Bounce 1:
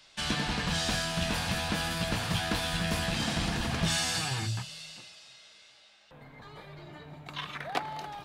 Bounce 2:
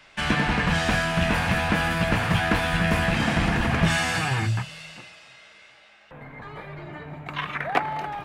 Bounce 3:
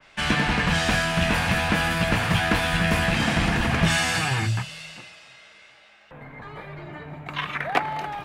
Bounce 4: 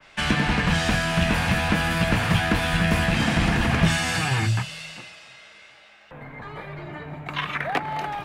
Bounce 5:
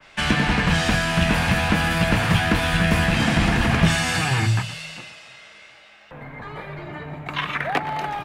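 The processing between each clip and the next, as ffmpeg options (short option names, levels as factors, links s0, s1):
-af "highshelf=f=3000:t=q:w=1.5:g=-9,volume=2.66"
-af "adynamicequalizer=threshold=0.01:dfrequency=2400:dqfactor=0.7:tfrequency=2400:tqfactor=0.7:attack=5:release=100:ratio=0.375:range=2:mode=boostabove:tftype=highshelf"
-filter_complex "[0:a]acrossover=split=360[s0][s1];[s1]acompressor=threshold=0.0631:ratio=6[s2];[s0][s2]amix=inputs=2:normalize=0,volume=1.26"
-af "aecho=1:1:119:0.188,volume=1.26"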